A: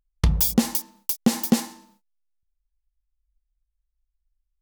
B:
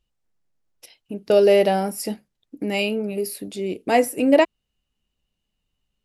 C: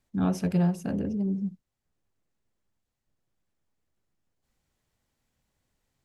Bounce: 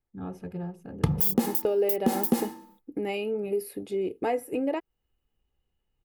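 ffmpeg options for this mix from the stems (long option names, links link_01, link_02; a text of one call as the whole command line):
ffmpeg -i stem1.wav -i stem2.wav -i stem3.wav -filter_complex "[0:a]highpass=frequency=120:width=0.5412,highpass=frequency=120:width=1.3066,equalizer=frequency=1800:width=0.31:gain=-5,acontrast=21,adelay=800,volume=1dB[link_01];[1:a]acompressor=threshold=-25dB:ratio=3,adelay=350,volume=-1.5dB[link_02];[2:a]volume=-8.5dB[link_03];[link_01][link_02][link_03]amix=inputs=3:normalize=0,equalizer=frequency=6000:width=0.51:gain=-13.5,aecho=1:1:2.4:0.44,alimiter=limit=-11dB:level=0:latency=1:release=111" out.wav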